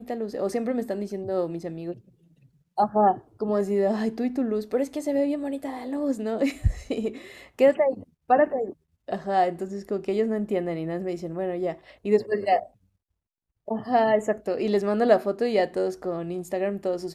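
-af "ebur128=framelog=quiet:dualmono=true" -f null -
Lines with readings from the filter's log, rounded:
Integrated loudness:
  I:         -23.0 LUFS
  Threshold: -33.4 LUFS
Loudness range:
  LRA:         3.4 LU
  Threshold: -43.3 LUFS
  LRA low:   -25.2 LUFS
  LRA high:  -21.8 LUFS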